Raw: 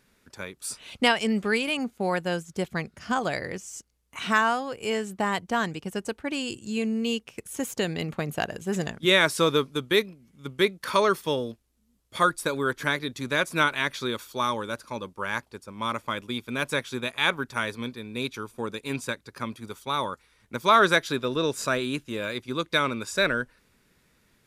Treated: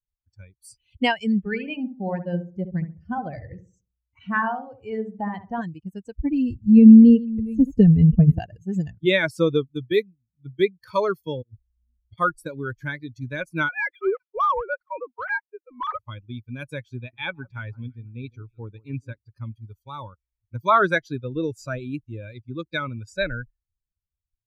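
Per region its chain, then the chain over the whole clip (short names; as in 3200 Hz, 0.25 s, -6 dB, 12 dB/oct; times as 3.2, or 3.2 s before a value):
1.38–5.62 bell 12000 Hz -11.5 dB 2.2 oct + darkening echo 68 ms, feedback 54%, low-pass 1700 Hz, level -5 dB
6.15–8.39 reverse delay 0.5 s, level -9.5 dB + tilt -3 dB/oct + comb 4.5 ms, depth 44%
11.42–12.18 brick-wall FIR low-pass 4900 Hz + negative-ratio compressor -48 dBFS
13.69–15.99 sine-wave speech + LPF 2300 Hz + sample leveller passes 2
16.97–19.18 high shelf 5800 Hz -9 dB + echo with dull and thin repeats by turns 0.161 s, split 1500 Hz, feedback 55%, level -13 dB
whole clip: per-bin expansion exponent 2; tone controls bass +14 dB, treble -14 dB; gain +3.5 dB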